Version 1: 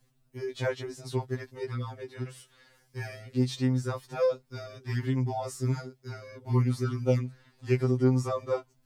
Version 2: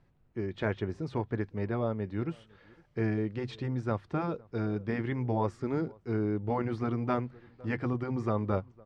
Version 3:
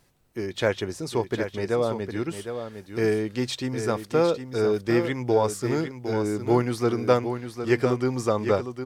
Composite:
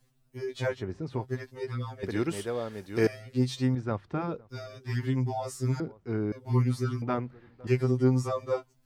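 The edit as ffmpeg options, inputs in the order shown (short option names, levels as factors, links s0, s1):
-filter_complex "[1:a]asplit=4[s0][s1][s2][s3];[0:a]asplit=6[s4][s5][s6][s7][s8][s9];[s4]atrim=end=0.91[s10];[s0]atrim=start=0.67:end=1.33[s11];[s5]atrim=start=1.09:end=2.032[s12];[2:a]atrim=start=2.028:end=3.072[s13];[s6]atrim=start=3.068:end=3.752[s14];[s1]atrim=start=3.748:end=4.492[s15];[s7]atrim=start=4.488:end=5.802[s16];[s2]atrim=start=5.798:end=6.322[s17];[s8]atrim=start=6.318:end=7.022[s18];[s3]atrim=start=7.018:end=7.672[s19];[s9]atrim=start=7.668[s20];[s10][s11]acrossfade=d=0.24:c1=tri:c2=tri[s21];[s21][s12]acrossfade=d=0.24:c1=tri:c2=tri[s22];[s22][s13]acrossfade=d=0.004:c1=hsin:c2=hsin[s23];[s23][s14]acrossfade=d=0.004:c1=hsin:c2=hsin[s24];[s24][s15]acrossfade=d=0.004:c1=hsin:c2=hsin[s25];[s25][s16]acrossfade=d=0.004:c1=hsin:c2=hsin[s26];[s26][s17]acrossfade=d=0.004:c1=hsin:c2=hsin[s27];[s27][s18]acrossfade=d=0.004:c1=hsin:c2=hsin[s28];[s28][s19]acrossfade=d=0.004:c1=hsin:c2=hsin[s29];[s29][s20]acrossfade=d=0.004:c1=hsin:c2=hsin"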